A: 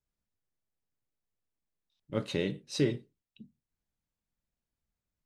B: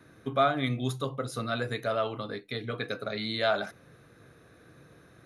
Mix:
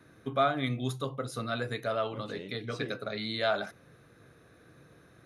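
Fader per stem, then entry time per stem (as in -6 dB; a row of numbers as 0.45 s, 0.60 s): -12.0 dB, -2.0 dB; 0.00 s, 0.00 s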